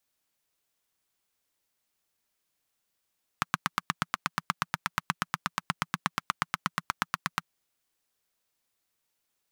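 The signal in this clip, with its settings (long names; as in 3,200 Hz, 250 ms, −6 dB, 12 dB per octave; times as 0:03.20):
pulse-train model of a single-cylinder engine, steady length 4.04 s, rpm 1,000, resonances 170/1,200 Hz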